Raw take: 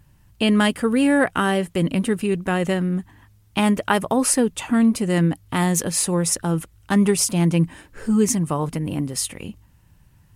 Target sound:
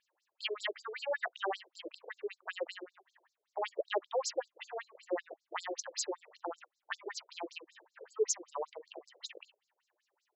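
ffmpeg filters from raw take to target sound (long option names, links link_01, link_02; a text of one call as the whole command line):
ffmpeg -i in.wav -af "afftfilt=real='re*between(b*sr/1024,470*pow(5700/470,0.5+0.5*sin(2*PI*5.2*pts/sr))/1.41,470*pow(5700/470,0.5+0.5*sin(2*PI*5.2*pts/sr))*1.41)':imag='im*between(b*sr/1024,470*pow(5700/470,0.5+0.5*sin(2*PI*5.2*pts/sr))/1.41,470*pow(5700/470,0.5+0.5*sin(2*PI*5.2*pts/sr))*1.41)':win_size=1024:overlap=0.75,volume=-6.5dB" out.wav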